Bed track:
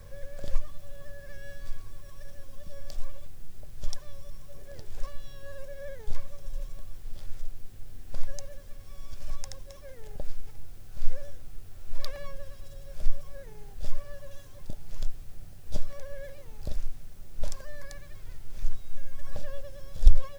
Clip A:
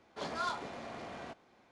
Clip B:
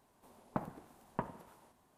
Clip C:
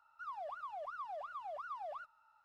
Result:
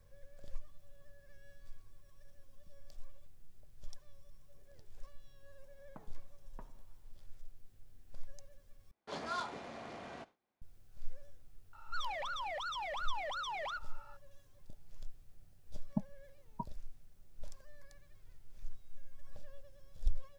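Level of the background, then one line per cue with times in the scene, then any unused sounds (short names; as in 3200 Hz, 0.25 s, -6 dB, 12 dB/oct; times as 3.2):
bed track -16.5 dB
5.4 add B -17.5 dB
8.91 replace with A -3 dB + gate with hold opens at -52 dBFS, closes at -59 dBFS, hold 15 ms, range -20 dB
11.73 add C -1 dB + sine folder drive 9 dB, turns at -36.5 dBFS
15.41 add B -1.5 dB + spectral expander 4:1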